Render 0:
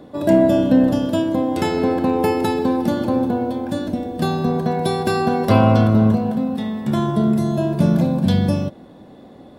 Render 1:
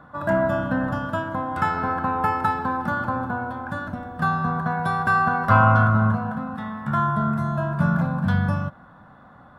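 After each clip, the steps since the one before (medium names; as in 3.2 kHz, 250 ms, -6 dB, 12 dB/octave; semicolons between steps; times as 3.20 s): FFT filter 150 Hz 0 dB, 380 Hz -17 dB, 1.4 kHz +15 dB, 2.2 kHz -5 dB, 4.5 kHz -13 dB; trim -2 dB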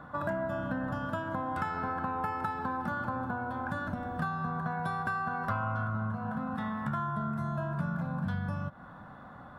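compression 6:1, threshold -31 dBFS, peak gain reduction 18 dB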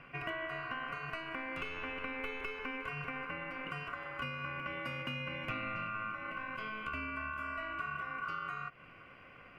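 ring modulator 1.3 kHz; trim -4 dB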